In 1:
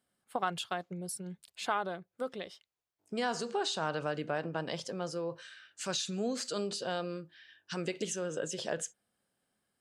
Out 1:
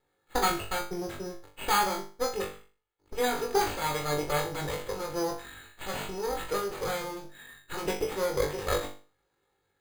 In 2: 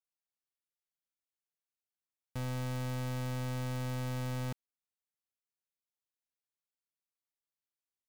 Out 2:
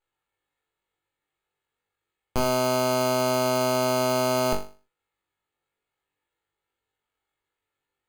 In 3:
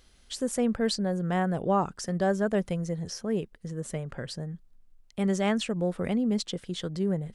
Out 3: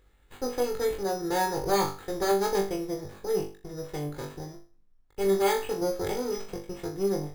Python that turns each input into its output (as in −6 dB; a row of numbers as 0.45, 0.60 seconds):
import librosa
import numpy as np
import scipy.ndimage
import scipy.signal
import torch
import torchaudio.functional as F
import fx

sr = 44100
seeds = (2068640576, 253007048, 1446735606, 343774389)

y = fx.lower_of_two(x, sr, delay_ms=2.3)
y = np.repeat(scipy.signal.resample_poly(y, 1, 8), 8)[:len(y)]
y = fx.room_flutter(y, sr, wall_m=3.5, rt60_s=0.36)
y = y * 10.0 ** (-12 / 20.0) / np.max(np.abs(y))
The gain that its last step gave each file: +7.5, +17.0, −2.0 decibels